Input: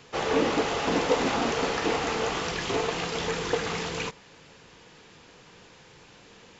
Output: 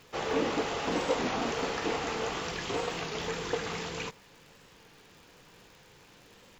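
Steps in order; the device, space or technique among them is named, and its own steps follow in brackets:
warped LP (wow of a warped record 33 1/3 rpm, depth 100 cents; surface crackle 130 per second −42 dBFS; pink noise bed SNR 33 dB)
level −5 dB

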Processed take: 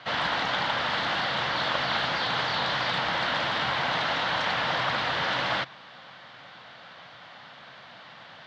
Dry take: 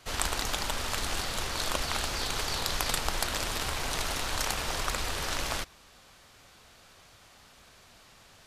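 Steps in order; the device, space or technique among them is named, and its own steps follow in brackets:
overdrive pedal into a guitar cabinet (mid-hump overdrive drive 26 dB, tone 5,800 Hz, clips at −7 dBFS; loudspeaker in its box 100–3,500 Hz, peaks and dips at 130 Hz +10 dB, 180 Hz +5 dB, 400 Hz −9 dB, 1,200 Hz −3 dB, 2,500 Hz −8 dB)
level −5 dB

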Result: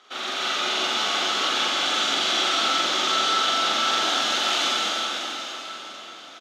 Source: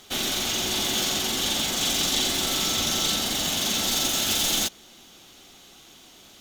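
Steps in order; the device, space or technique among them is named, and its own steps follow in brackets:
high-pass filter 170 Hz 6 dB per octave
station announcement (band-pass filter 380–3,900 Hz; parametric band 1,300 Hz +11 dB 0.41 octaves; loudspeakers that aren't time-aligned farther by 15 metres −1 dB, 73 metres −9 dB; convolution reverb RT60 4.8 s, pre-delay 84 ms, DRR −5 dB)
level −4.5 dB

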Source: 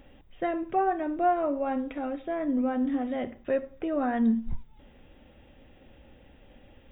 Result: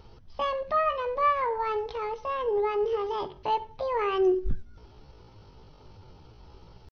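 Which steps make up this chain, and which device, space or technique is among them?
chipmunk voice (pitch shifter +8.5 semitones)
bass and treble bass +5 dB, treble −1 dB

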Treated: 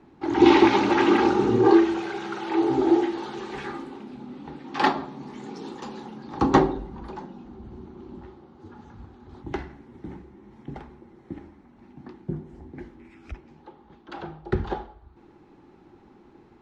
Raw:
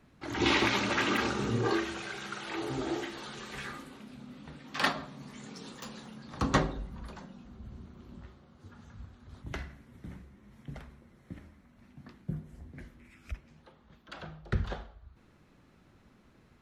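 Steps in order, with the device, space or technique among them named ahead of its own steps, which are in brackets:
inside a cardboard box (low-pass filter 5,900 Hz 12 dB per octave; hollow resonant body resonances 350/820 Hz, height 16 dB, ringing for 25 ms)
level +1 dB

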